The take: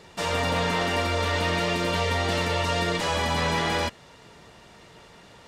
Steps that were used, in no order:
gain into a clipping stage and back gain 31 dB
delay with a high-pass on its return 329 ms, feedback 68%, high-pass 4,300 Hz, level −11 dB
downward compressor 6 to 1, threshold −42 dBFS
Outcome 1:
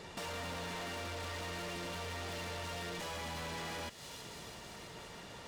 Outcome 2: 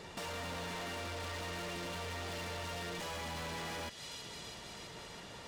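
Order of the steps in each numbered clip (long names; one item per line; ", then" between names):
gain into a clipping stage and back, then delay with a high-pass on its return, then downward compressor
delay with a high-pass on its return, then gain into a clipping stage and back, then downward compressor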